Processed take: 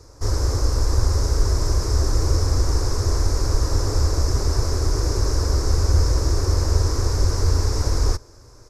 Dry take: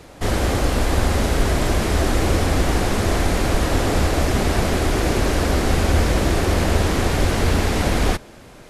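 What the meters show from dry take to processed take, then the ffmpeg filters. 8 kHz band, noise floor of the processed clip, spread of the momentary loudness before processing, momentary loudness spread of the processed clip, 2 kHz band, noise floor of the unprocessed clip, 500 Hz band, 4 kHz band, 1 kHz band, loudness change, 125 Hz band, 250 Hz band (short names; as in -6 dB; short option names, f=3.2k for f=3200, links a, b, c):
-0.5 dB, -46 dBFS, 1 LU, 2 LU, -13.5 dB, -43 dBFS, -7.0 dB, -3.0 dB, -8.5 dB, -2.0 dB, +1.0 dB, -10.0 dB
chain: -af "firequalizer=gain_entry='entry(110,0);entry(180,-22);entry(290,-10);entry(430,-6);entry(720,-16);entry(1000,-6);entry(2000,-18);entry(3100,-25);entry(5200,4);entry(9100,-10)':delay=0.05:min_phase=1,volume=1.5dB"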